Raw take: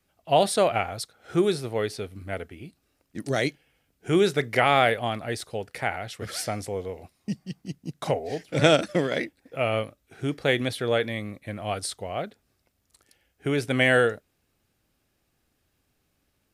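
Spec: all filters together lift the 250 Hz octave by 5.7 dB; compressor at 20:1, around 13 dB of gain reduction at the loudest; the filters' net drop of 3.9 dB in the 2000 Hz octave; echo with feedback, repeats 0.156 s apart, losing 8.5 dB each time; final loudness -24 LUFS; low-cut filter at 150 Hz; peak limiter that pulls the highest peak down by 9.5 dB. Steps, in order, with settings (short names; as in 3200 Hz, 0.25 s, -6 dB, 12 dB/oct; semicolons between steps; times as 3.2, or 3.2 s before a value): HPF 150 Hz; bell 250 Hz +8.5 dB; bell 2000 Hz -5 dB; compressor 20:1, threshold -25 dBFS; limiter -23.5 dBFS; feedback echo 0.156 s, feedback 38%, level -8.5 dB; gain +10.5 dB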